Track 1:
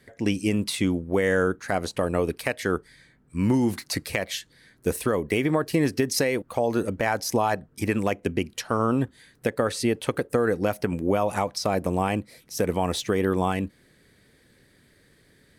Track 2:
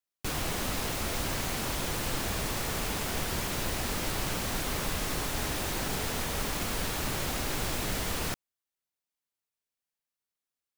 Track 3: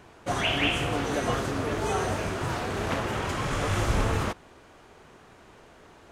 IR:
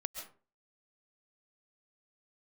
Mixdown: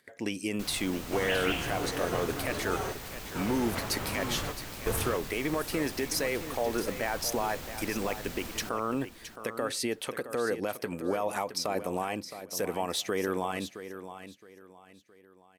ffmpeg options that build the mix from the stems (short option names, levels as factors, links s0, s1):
-filter_complex "[0:a]highpass=f=440:p=1,agate=range=0.00631:threshold=0.00158:ratio=16:detection=peak,alimiter=limit=0.126:level=0:latency=1:release=68,volume=0.841,asplit=3[s0][s1][s2];[s1]volume=0.266[s3];[1:a]equalizer=f=11000:t=o:w=0.3:g=-5,adelay=350,volume=0.316,asplit=2[s4][s5];[s5]volume=0.237[s6];[2:a]adelay=850,volume=0.422[s7];[s2]apad=whole_len=306936[s8];[s7][s8]sidechaingate=range=0.0224:threshold=0.00398:ratio=16:detection=peak[s9];[s3][s6]amix=inputs=2:normalize=0,aecho=0:1:667|1334|2001:1|0.2|0.04[s10];[s0][s4][s9][s10]amix=inputs=4:normalize=0,acompressor=mode=upward:threshold=0.00562:ratio=2.5,equalizer=f=13000:w=6.9:g=7.5"